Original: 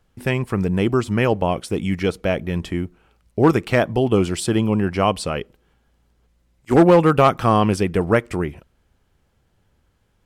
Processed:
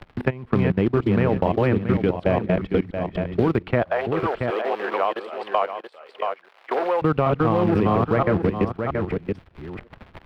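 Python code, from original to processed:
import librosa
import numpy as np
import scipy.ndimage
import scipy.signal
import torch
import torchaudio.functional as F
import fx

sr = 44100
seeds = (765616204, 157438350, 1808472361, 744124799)

y = fx.reverse_delay(x, sr, ms=484, wet_db=-1.0)
y = fx.high_shelf(y, sr, hz=3400.0, db=-4.5)
y = fx.quant_float(y, sr, bits=2)
y = fx.dmg_crackle(y, sr, seeds[0], per_s=220.0, level_db=-38.0)
y = fx.air_absorb(y, sr, metres=400.0)
y = fx.level_steps(y, sr, step_db=20)
y = fx.highpass(y, sr, hz=540.0, slope=24, at=(3.82, 7.02))
y = y + 10.0 ** (-10.5 / 20.0) * np.pad(y, (int(678 * sr / 1000.0), 0))[:len(y)]
y = fx.band_squash(y, sr, depth_pct=70)
y = y * 10.0 ** (1.5 / 20.0)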